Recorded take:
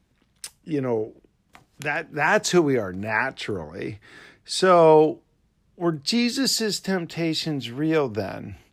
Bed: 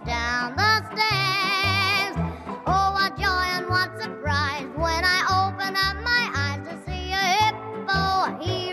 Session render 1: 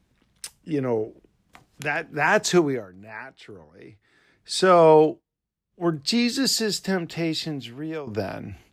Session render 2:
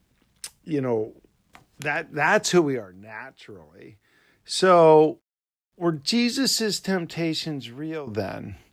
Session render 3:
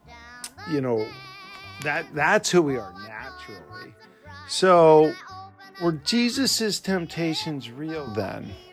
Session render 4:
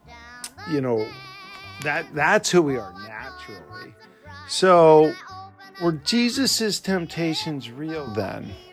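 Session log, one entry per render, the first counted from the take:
2.58–4.55 dip -14.5 dB, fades 0.29 s; 5.06–5.86 dip -20.5 dB, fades 0.16 s; 7.14–8.07 fade out, to -14 dB
bit-crush 12-bit
add bed -19.5 dB
gain +1.5 dB

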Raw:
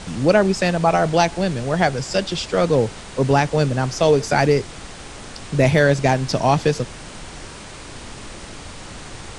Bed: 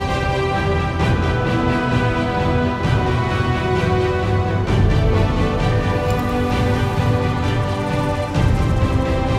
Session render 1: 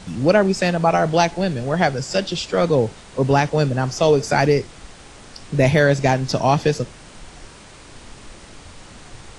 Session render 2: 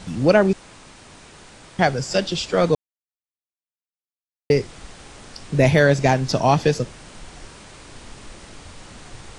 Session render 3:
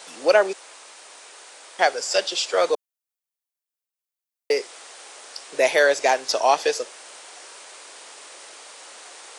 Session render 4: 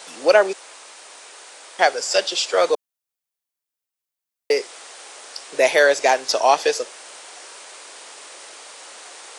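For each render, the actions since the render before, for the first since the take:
noise print and reduce 6 dB
0.53–1.79 room tone; 2.75–4.5 mute
HPF 450 Hz 24 dB/oct; high shelf 6700 Hz +8.5 dB
gain +2.5 dB

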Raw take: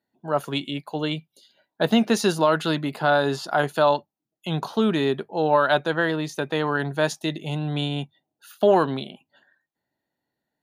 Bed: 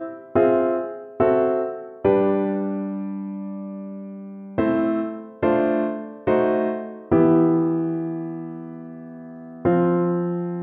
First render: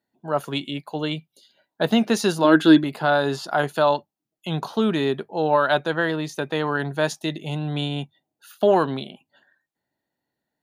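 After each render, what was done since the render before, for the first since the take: 2.44–2.84 small resonant body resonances 310/1600/3400 Hz, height 15 dB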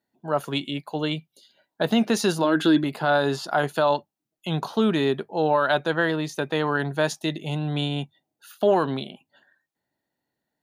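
limiter -10.5 dBFS, peak gain reduction 7 dB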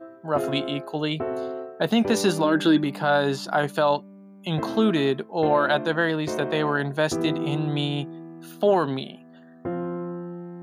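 add bed -11 dB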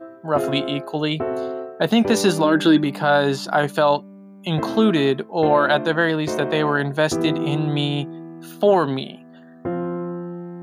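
gain +4 dB

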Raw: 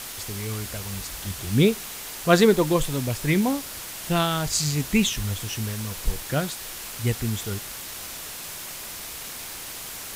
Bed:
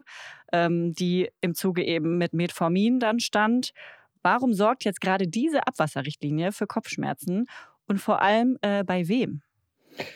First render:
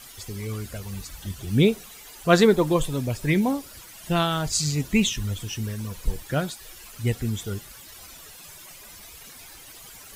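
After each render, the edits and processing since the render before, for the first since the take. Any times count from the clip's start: denoiser 13 dB, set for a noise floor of -37 dBFS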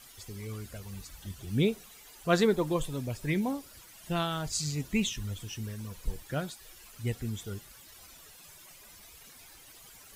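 gain -8 dB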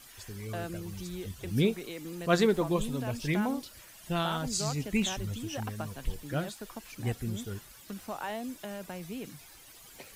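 add bed -16 dB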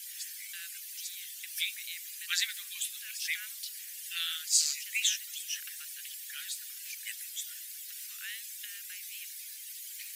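steep high-pass 1700 Hz 48 dB/oct; tilt +3 dB/oct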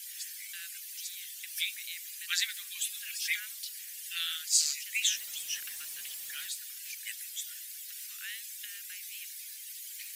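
2.79–3.4 comb 4.3 ms, depth 69%; 5.16–6.47 zero-crossing step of -48 dBFS

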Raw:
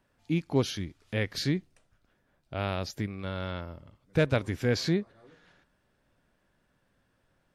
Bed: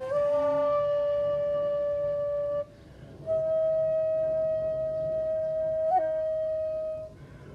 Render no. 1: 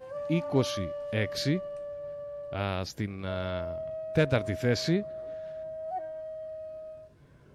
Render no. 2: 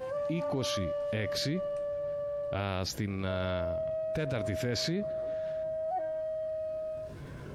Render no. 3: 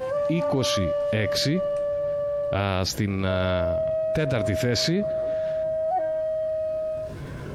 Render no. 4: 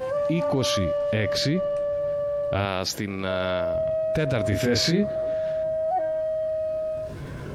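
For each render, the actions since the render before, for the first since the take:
add bed -10.5 dB
limiter -24.5 dBFS, peak gain reduction 10.5 dB; fast leveller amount 50%
gain +8.5 dB
0.97–1.94 high shelf 11000 Hz -10 dB; 2.65–3.75 HPF 260 Hz 6 dB/oct; 4.49–5.16 doubler 29 ms -3.5 dB

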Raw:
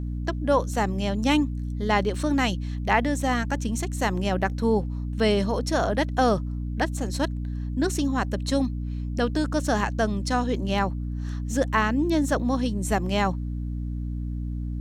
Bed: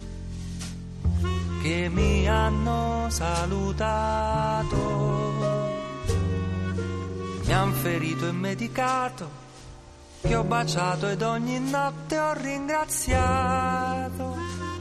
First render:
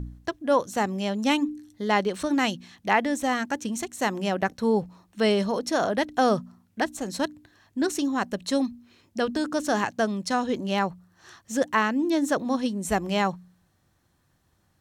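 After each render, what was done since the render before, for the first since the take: de-hum 60 Hz, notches 5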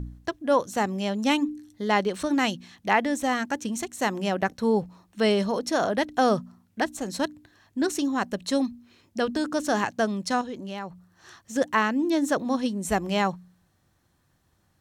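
10.41–11.56 compressor 2:1, threshold -38 dBFS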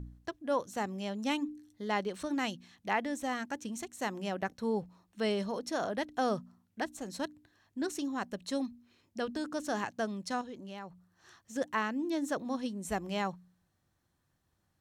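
gain -9.5 dB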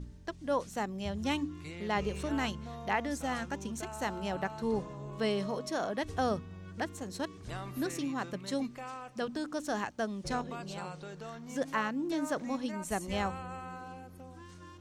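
add bed -18.5 dB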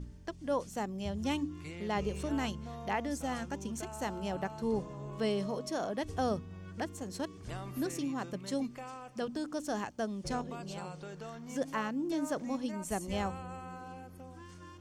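notch 3900 Hz, Q 12; dynamic EQ 1700 Hz, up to -5 dB, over -48 dBFS, Q 0.73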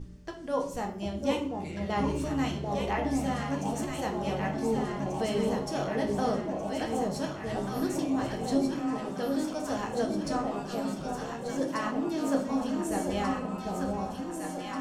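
echo with dull and thin repeats by turns 0.744 s, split 890 Hz, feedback 77%, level -2 dB; shoebox room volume 59 m³, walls mixed, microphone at 0.61 m

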